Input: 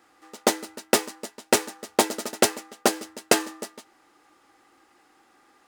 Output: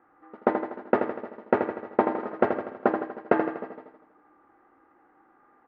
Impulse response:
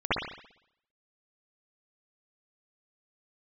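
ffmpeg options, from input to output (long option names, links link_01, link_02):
-filter_complex "[0:a]lowpass=frequency=1600:width=0.5412,lowpass=frequency=1600:width=1.3066,aecho=1:1:81|162|243|324|405|486|567:0.447|0.246|0.135|0.0743|0.0409|0.0225|0.0124,asplit=2[link_01][link_02];[1:a]atrim=start_sample=2205,asetrate=57330,aresample=44100[link_03];[link_02][link_03]afir=irnorm=-1:irlink=0,volume=-25.5dB[link_04];[link_01][link_04]amix=inputs=2:normalize=0,volume=-1dB"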